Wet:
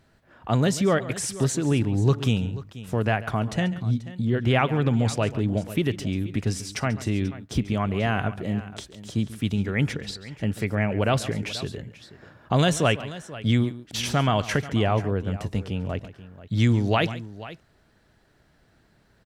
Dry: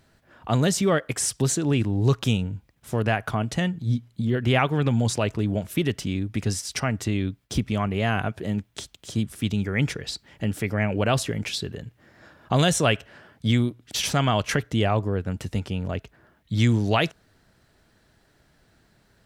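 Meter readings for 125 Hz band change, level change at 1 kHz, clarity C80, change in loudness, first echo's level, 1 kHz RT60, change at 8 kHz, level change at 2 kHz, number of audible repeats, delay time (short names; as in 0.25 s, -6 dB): 0.0 dB, 0.0 dB, none, -0.5 dB, -16.0 dB, none, -4.5 dB, -1.0 dB, 2, 0.139 s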